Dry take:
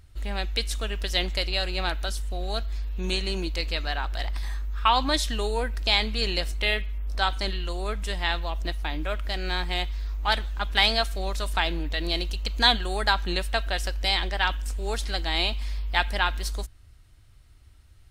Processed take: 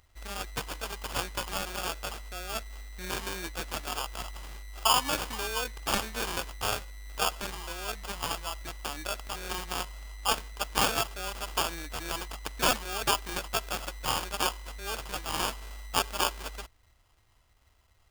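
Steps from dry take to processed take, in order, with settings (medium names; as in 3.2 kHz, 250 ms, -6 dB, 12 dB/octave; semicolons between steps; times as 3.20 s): sample-rate reducer 2 kHz, jitter 0%; tilt shelf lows -8 dB, about 740 Hz; trim -5.5 dB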